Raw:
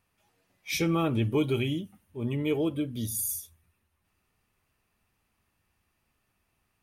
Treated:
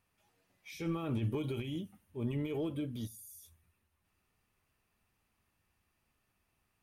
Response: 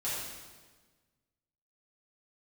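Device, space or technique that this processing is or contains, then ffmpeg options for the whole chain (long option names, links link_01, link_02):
de-esser from a sidechain: -filter_complex "[0:a]asplit=2[link_01][link_02];[link_02]highpass=frequency=6100:poles=1,apad=whole_len=300915[link_03];[link_01][link_03]sidechaincompress=threshold=-51dB:ratio=4:attack=1.5:release=24,volume=-3.5dB"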